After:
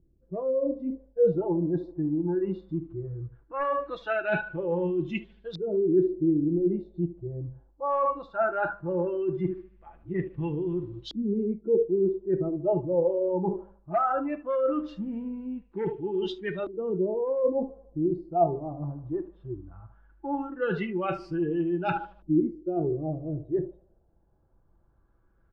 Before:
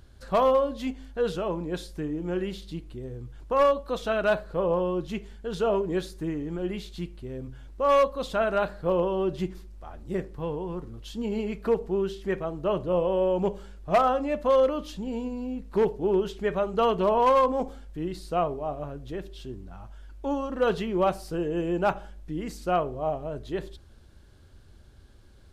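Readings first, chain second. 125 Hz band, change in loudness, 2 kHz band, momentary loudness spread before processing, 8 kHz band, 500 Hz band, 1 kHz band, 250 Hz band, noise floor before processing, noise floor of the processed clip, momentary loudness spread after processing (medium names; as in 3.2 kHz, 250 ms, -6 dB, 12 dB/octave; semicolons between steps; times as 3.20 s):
+2.0 dB, -1.5 dB, -0.5 dB, 15 LU, no reading, -2.0 dB, -4.5 dB, +2.5 dB, -52 dBFS, -64 dBFS, 11 LU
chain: on a send: feedback delay 76 ms, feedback 53%, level -12 dB; on the sum: dynamic bell 4.7 kHz, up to +5 dB, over -47 dBFS, Q 0.98; spectral noise reduction 18 dB; reverse; compression 12:1, threshold -31 dBFS, peak gain reduction 15 dB; reverse; treble shelf 3.7 kHz -10 dB; comb 6 ms, depth 39%; LFO low-pass saw up 0.18 Hz 320–4000 Hz; trim +5 dB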